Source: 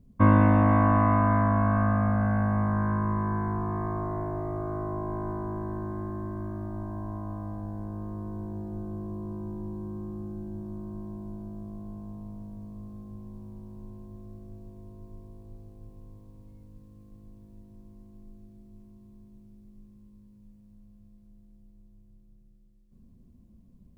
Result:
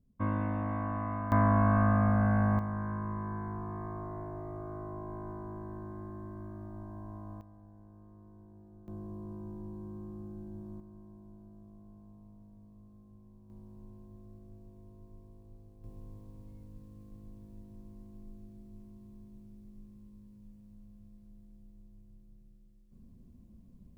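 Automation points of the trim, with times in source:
-13.5 dB
from 1.32 s -1.5 dB
from 2.59 s -9 dB
from 7.41 s -19 dB
from 8.88 s -7 dB
from 10.80 s -14 dB
from 13.50 s -7.5 dB
from 15.84 s 0 dB

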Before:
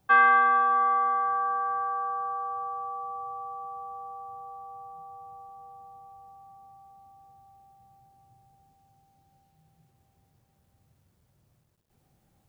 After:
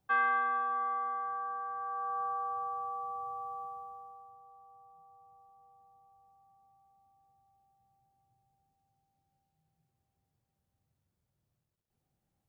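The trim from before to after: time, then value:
1.75 s -10 dB
2.21 s -3 dB
3.61 s -3 dB
4.39 s -14.5 dB

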